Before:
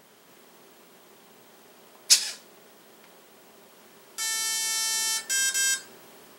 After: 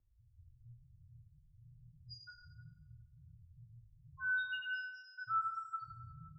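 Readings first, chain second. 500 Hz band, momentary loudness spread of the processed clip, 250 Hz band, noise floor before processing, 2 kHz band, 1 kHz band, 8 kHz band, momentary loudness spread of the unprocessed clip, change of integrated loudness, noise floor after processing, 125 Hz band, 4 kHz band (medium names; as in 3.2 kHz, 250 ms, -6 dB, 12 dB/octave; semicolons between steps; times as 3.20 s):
under -40 dB, 22 LU, under -10 dB, -55 dBFS, -6.0 dB, +2.0 dB, under -40 dB, 13 LU, -16.0 dB, -68 dBFS, no reading, -25.5 dB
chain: level-controlled noise filter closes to 370 Hz, open at -21.5 dBFS; bass shelf 350 Hz +10.5 dB; loudest bins only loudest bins 1; plate-style reverb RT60 1.3 s, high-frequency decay 0.65×, DRR -1 dB; mistuned SSB -270 Hz 310–3300 Hz; trim +5 dB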